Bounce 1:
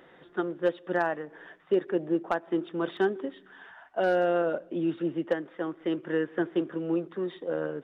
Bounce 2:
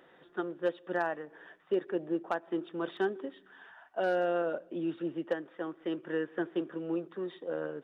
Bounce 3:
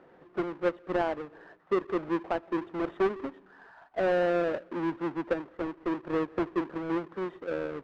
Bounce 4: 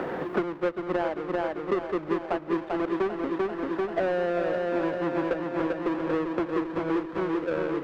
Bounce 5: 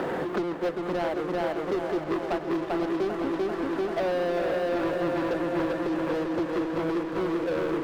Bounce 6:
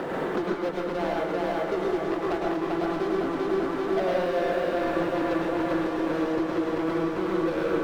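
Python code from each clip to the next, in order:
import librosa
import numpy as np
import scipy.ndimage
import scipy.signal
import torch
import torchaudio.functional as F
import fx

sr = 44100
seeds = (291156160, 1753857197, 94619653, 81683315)

y1 = fx.low_shelf(x, sr, hz=170.0, db=-6.5)
y1 = fx.notch(y1, sr, hz=2100.0, q=18.0)
y1 = F.gain(torch.from_numpy(y1), -4.0).numpy()
y2 = fx.halfwave_hold(y1, sr)
y2 = scipy.signal.sosfilt(scipy.signal.butter(2, 1600.0, 'lowpass', fs=sr, output='sos'), y2)
y3 = fx.echo_feedback(y2, sr, ms=392, feedback_pct=59, wet_db=-4.5)
y3 = fx.band_squash(y3, sr, depth_pct=100)
y4 = fx.leveller(y3, sr, passes=3)
y4 = fx.echo_feedback(y4, sr, ms=514, feedback_pct=57, wet_db=-10.0)
y4 = F.gain(torch.from_numpy(y4), -8.0).numpy()
y5 = fx.rev_plate(y4, sr, seeds[0], rt60_s=0.54, hf_ratio=0.75, predelay_ms=95, drr_db=-1.5)
y5 = F.gain(torch.from_numpy(y5), -2.0).numpy()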